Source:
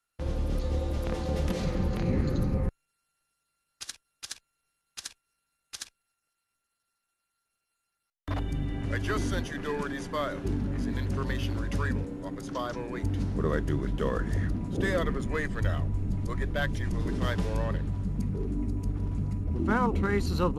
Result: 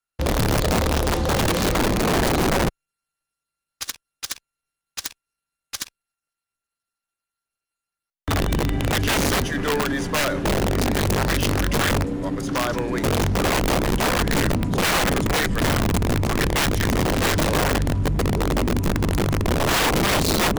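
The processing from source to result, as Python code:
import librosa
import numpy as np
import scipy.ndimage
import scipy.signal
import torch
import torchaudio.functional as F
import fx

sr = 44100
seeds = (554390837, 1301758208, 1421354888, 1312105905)

y = fx.leveller(x, sr, passes=3)
y = (np.mod(10.0 ** (16.5 / 20.0) * y + 1.0, 2.0) - 1.0) / 10.0 ** (16.5 / 20.0)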